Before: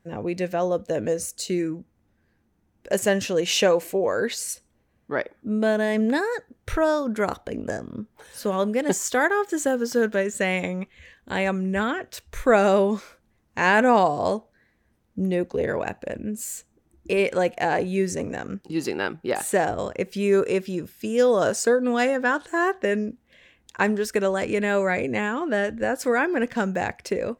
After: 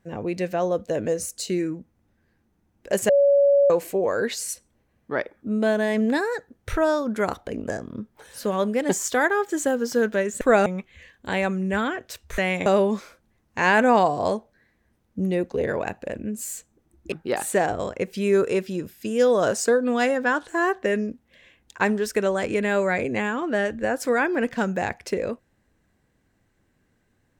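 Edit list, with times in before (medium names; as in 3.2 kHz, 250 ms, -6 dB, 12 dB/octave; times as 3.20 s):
3.09–3.70 s: bleep 564 Hz -13.5 dBFS
10.41–10.69 s: swap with 12.41–12.66 s
17.12–19.11 s: delete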